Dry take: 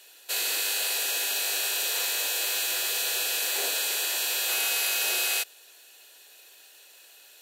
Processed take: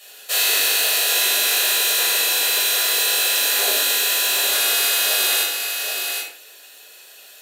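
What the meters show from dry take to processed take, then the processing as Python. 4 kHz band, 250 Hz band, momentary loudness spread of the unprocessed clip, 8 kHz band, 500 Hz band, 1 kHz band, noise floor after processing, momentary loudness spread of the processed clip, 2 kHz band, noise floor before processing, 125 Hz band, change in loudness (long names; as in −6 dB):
+9.5 dB, +8.5 dB, 2 LU, +8.5 dB, +9.5 dB, +9.5 dB, −45 dBFS, 6 LU, +9.0 dB, −53 dBFS, can't be measured, +8.5 dB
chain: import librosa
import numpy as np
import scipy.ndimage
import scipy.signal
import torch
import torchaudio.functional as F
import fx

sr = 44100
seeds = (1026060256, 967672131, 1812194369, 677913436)

p1 = fx.high_shelf(x, sr, hz=10000.0, db=3.5)
p2 = fx.rider(p1, sr, range_db=4, speed_s=2.0)
p3 = p2 + fx.echo_single(p2, sr, ms=772, db=-5.5, dry=0)
y = fx.room_shoebox(p3, sr, seeds[0], volume_m3=780.0, walls='furnished', distance_m=6.2)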